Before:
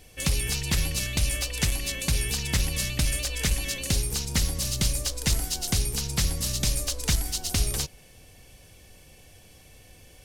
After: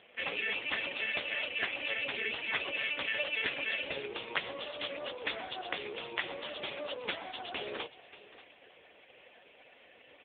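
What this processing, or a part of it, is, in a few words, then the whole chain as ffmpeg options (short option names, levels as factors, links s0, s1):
satellite phone: -af "highpass=290,highpass=370,lowpass=3400,aecho=1:1:583:0.141,volume=2.11" -ar 8000 -c:a libopencore_amrnb -b:a 4750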